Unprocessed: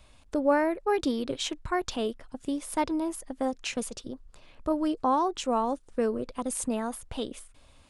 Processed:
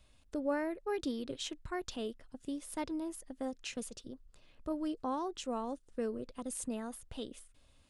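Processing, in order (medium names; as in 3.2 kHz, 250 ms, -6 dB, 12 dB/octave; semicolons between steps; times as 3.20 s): peaking EQ 920 Hz -5.5 dB 1.2 oct; band-stop 2.3 kHz, Q 18; trim -8 dB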